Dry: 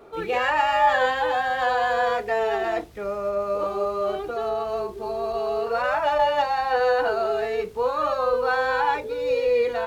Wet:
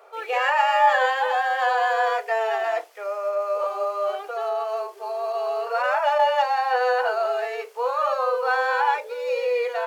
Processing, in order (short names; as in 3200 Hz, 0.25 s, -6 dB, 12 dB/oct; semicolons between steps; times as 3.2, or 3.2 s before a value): steep high-pass 510 Hz 36 dB/oct; bell 3800 Hz -6.5 dB 0.22 oct; gain +1.5 dB